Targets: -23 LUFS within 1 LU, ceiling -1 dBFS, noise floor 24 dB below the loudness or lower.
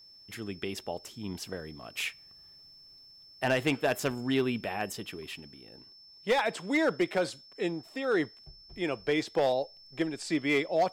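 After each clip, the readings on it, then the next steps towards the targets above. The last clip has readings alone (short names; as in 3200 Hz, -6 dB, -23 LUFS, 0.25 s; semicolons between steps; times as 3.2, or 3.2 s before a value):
clipped 0.4%; flat tops at -19.5 dBFS; steady tone 5300 Hz; tone level -52 dBFS; loudness -31.5 LUFS; peak -19.5 dBFS; loudness target -23.0 LUFS
-> clip repair -19.5 dBFS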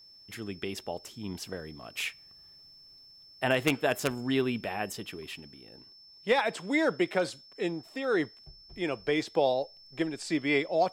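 clipped 0.0%; steady tone 5300 Hz; tone level -52 dBFS
-> notch 5300 Hz, Q 30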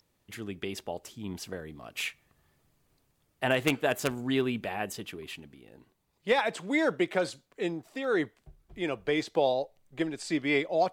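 steady tone none; loudness -31.0 LUFS; peak -10.5 dBFS; loudness target -23.0 LUFS
-> gain +8 dB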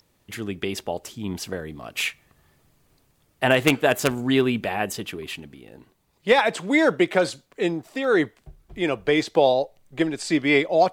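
loudness -23.0 LUFS; peak -2.5 dBFS; noise floor -66 dBFS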